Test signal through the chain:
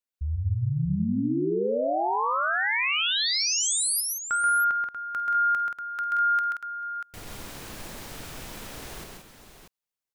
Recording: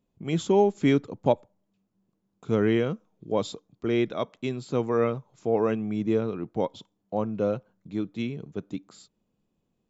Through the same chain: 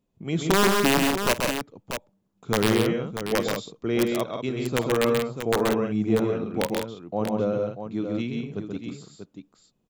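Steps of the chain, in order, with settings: integer overflow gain 13.5 dB; multi-tap echo 50/132/179/638 ms -17.5/-4/-7/-8.5 dB

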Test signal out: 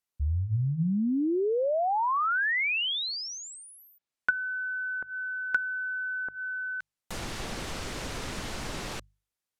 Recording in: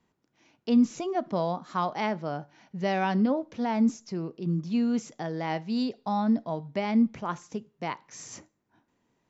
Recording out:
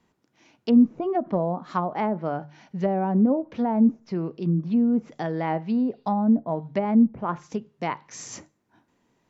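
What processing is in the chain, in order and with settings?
low-pass that closes with the level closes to 670 Hz, closed at -23.5 dBFS; hum notches 50/100/150 Hz; trim +5 dB

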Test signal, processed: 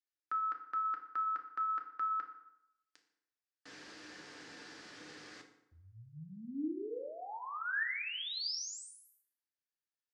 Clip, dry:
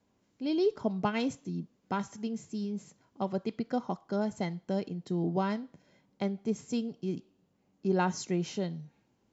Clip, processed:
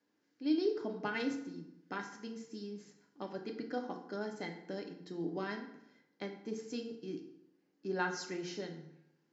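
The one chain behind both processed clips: cabinet simulation 250–6700 Hz, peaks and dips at 320 Hz +4 dB, 650 Hz -6 dB, 950 Hz -4 dB, 1.7 kHz +9 dB, 4.8 kHz +5 dB; FDN reverb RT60 0.82 s, low-frequency decay 1×, high-frequency decay 0.7×, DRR 3 dB; trim -6.5 dB

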